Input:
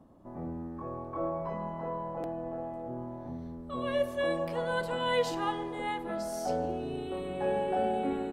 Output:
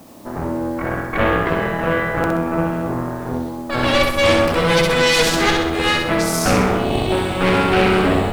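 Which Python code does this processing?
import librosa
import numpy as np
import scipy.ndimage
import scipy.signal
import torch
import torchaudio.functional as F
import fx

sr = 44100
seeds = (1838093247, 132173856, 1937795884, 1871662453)

p1 = fx.low_shelf(x, sr, hz=110.0, db=-11.5)
p2 = fx.cheby_harmonics(p1, sr, harmonics=(8,), levels_db=(-9,), full_scale_db=-17.0)
p3 = fx.rider(p2, sr, range_db=4, speed_s=0.5)
p4 = p2 + (p3 * 10.0 ** (-1.5 / 20.0))
p5 = fx.quant_dither(p4, sr, seeds[0], bits=10, dither='triangular')
p6 = fx.dynamic_eq(p5, sr, hz=1000.0, q=1.2, threshold_db=-39.0, ratio=4.0, max_db=-6)
p7 = p6 + fx.echo_feedback(p6, sr, ms=64, feedback_pct=47, wet_db=-4, dry=0)
y = p7 * 10.0 ** (8.5 / 20.0)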